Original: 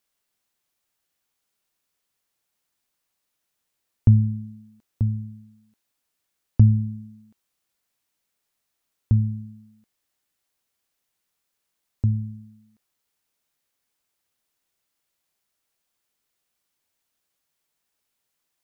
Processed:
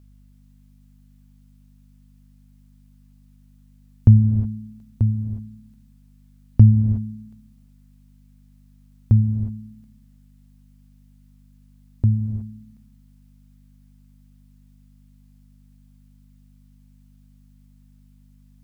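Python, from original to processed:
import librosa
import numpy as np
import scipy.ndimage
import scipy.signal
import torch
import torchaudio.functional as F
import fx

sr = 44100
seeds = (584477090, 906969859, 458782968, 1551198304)

y = fx.add_hum(x, sr, base_hz=50, snr_db=25)
y = fx.rev_gated(y, sr, seeds[0], gate_ms=390, shape='rising', drr_db=9.0)
y = y * librosa.db_to_amplitude(3.5)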